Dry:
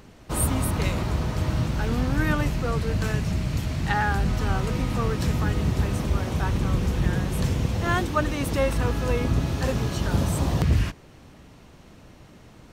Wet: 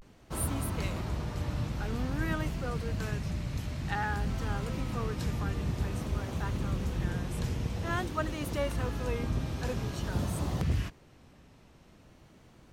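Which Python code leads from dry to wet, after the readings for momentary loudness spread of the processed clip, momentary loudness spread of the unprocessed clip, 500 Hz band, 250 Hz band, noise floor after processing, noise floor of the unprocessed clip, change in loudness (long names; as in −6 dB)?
3 LU, 3 LU, −8.5 dB, −8.5 dB, −58 dBFS, −49 dBFS, −8.5 dB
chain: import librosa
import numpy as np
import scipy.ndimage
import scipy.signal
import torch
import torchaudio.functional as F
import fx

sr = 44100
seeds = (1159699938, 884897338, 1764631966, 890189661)

y = fx.vibrato(x, sr, rate_hz=0.5, depth_cents=91.0)
y = y * 10.0 ** (-8.5 / 20.0)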